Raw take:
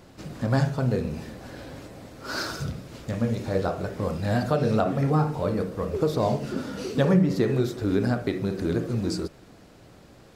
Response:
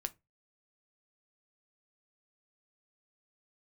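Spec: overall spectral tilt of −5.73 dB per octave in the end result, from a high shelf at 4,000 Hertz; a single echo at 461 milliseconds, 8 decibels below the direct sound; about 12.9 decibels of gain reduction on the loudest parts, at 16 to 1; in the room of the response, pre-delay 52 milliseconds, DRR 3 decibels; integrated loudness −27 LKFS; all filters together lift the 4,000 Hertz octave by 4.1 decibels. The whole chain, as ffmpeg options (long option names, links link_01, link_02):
-filter_complex "[0:a]highshelf=frequency=4000:gain=-5,equalizer=frequency=4000:width_type=o:gain=8,acompressor=threshold=-29dB:ratio=16,aecho=1:1:461:0.398,asplit=2[link_01][link_02];[1:a]atrim=start_sample=2205,adelay=52[link_03];[link_02][link_03]afir=irnorm=-1:irlink=0,volume=-2dB[link_04];[link_01][link_04]amix=inputs=2:normalize=0,volume=5.5dB"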